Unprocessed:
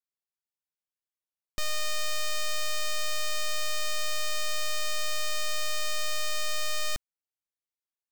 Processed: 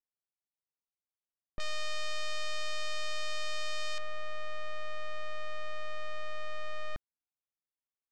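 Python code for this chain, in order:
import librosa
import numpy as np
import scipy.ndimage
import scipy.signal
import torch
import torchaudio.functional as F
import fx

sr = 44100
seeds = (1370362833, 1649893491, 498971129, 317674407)

y = fx.lowpass(x, sr, hz=fx.steps((0.0, 1200.0), (1.6, 4800.0), (3.98, 1800.0)), slope=12)
y = y * 10.0 ** (-4.0 / 20.0)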